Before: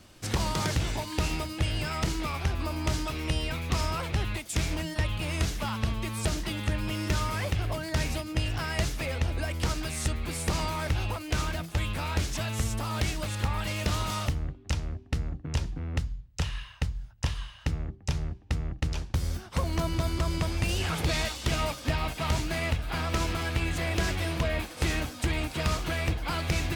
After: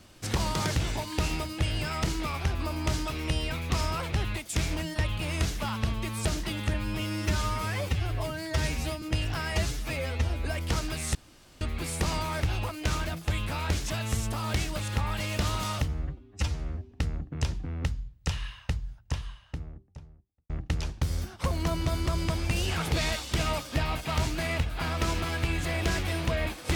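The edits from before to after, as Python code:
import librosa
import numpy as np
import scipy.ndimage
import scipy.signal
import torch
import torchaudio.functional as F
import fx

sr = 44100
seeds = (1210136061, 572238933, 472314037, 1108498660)

y = fx.studio_fade_out(x, sr, start_s=16.65, length_s=1.97)
y = fx.edit(y, sr, fx.stretch_span(start_s=6.74, length_s=1.52, factor=1.5),
    fx.stretch_span(start_s=8.76, length_s=0.62, factor=1.5),
    fx.insert_room_tone(at_s=10.08, length_s=0.46),
    fx.stretch_span(start_s=14.35, length_s=0.69, factor=1.5), tone=tone)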